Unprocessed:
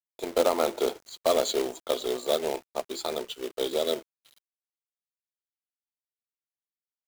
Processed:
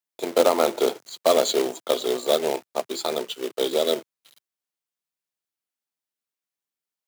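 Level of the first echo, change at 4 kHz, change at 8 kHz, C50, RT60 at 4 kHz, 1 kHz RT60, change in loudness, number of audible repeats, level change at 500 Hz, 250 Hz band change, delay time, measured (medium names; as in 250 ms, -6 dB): no echo, +5.0 dB, +5.0 dB, no reverb, no reverb, no reverb, +5.0 dB, no echo, +5.0 dB, +5.0 dB, no echo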